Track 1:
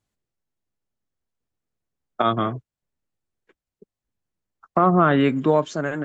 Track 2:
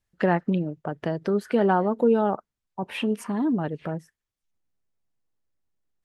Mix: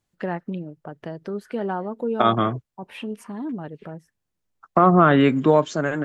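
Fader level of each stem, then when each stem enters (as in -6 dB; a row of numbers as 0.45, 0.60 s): +2.0, -6.0 dB; 0.00, 0.00 s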